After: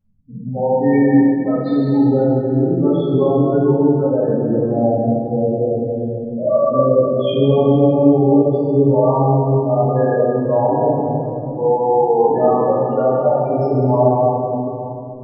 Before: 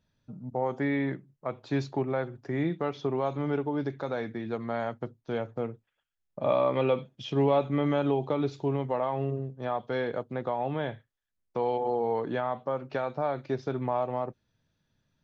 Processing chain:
0:00.93–0:01.83: comb filter 3.9 ms, depth 39%
in parallel at −2 dB: compressor whose output falls as the input rises −31 dBFS
on the sum: spectral peaks only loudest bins 8
convolution reverb RT60 3.1 s, pre-delay 4 ms, DRR −15 dB
level −4.5 dB

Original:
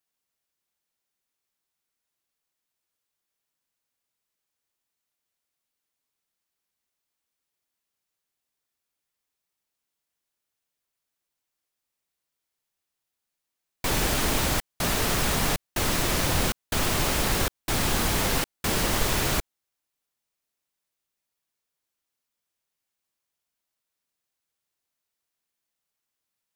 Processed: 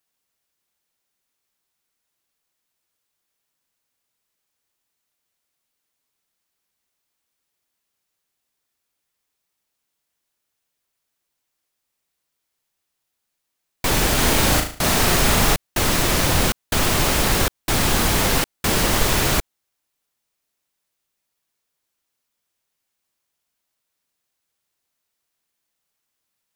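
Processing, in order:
0:14.15–0:15.54: flutter between parallel walls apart 6.3 metres, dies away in 0.43 s
level +6 dB

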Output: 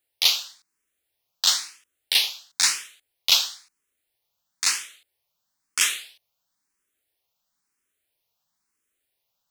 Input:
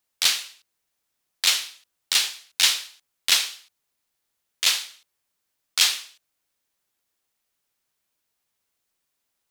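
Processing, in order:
frequency shifter mixed with the dry sound +1 Hz
level +2.5 dB

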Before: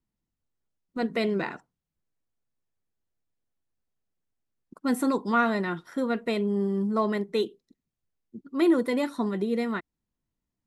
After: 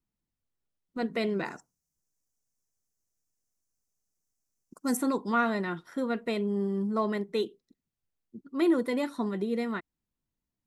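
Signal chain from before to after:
0:01.45–0:04.97: high shelf with overshoot 4,600 Hz +10 dB, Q 3
level −3 dB

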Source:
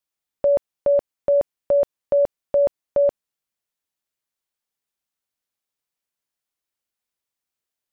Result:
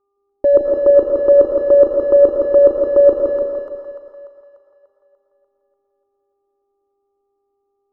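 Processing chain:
low-pass that shuts in the quiet parts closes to 380 Hz, open at −19 dBFS
in parallel at −4.5 dB: soft clipping −22 dBFS, distortion −12 dB
on the sum: drawn EQ curve 190 Hz 0 dB, 280 Hz +11 dB, 880 Hz −3 dB, 1,300 Hz +6 dB, 1,800 Hz −9 dB
on a send at −1.5 dB: convolution reverb RT60 0.85 s, pre-delay 65 ms
on the sum: hum with harmonics 400 Hz, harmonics 3, −77 dBFS −4 dB per octave
phaser with its sweep stopped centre 680 Hz, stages 6
echo with a time of its own for lows and highs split 730 Hz, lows 164 ms, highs 294 ms, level −3.5 dB
level +6.5 dB

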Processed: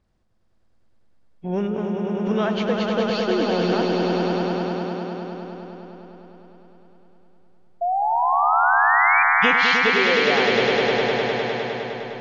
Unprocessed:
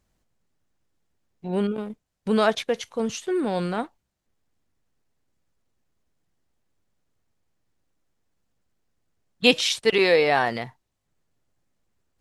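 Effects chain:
hearing-aid frequency compression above 2,300 Hz 1.5 to 1
downward compressor, threshold −24 dBFS, peak gain reduction 11.5 dB
sound drawn into the spectrogram rise, 0:07.81–0:09.23, 680–2,400 Hz −25 dBFS
on a send: echo that builds up and dies away 102 ms, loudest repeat 5, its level −5 dB
on the sum: one half of a high-frequency compander decoder only
level +3.5 dB

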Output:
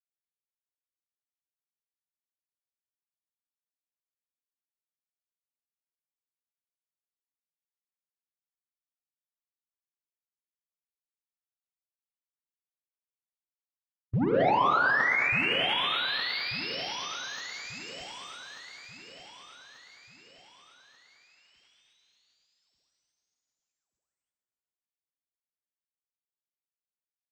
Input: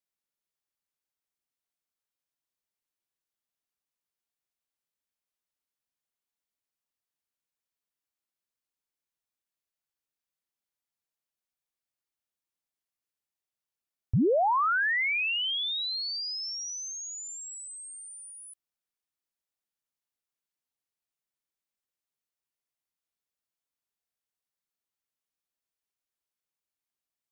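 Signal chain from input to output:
high-pass filter 550 Hz 6 dB per octave
noise gate with hold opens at −41 dBFS
comb filter 6.9 ms, depth 33%
leveller curve on the samples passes 3
in parallel at −3 dB: brickwall limiter −32 dBFS, peak gain reduction 12 dB
on the sum: four-comb reverb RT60 3.1 s, combs from 32 ms, DRR 5 dB
bit-depth reduction 10 bits, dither none
formants moved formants −2 semitones
high-frequency loss of the air 320 metres
on a send: repeating echo 1,188 ms, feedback 45%, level −10 dB
on the sum: level −1.5 dB

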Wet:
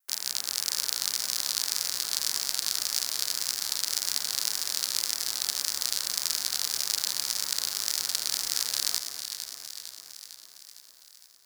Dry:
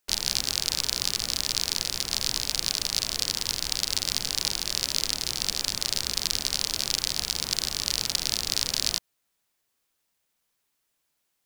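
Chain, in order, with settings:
automatic gain control gain up to 15 dB
high shelf with overshoot 2,100 Hz −7 dB, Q 1.5
delay that swaps between a low-pass and a high-pass 228 ms, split 1,400 Hz, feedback 77%, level −6 dB
pitch vibrato 1.8 Hz 54 cents
spectral tilt +4.5 dB per octave
level −8 dB

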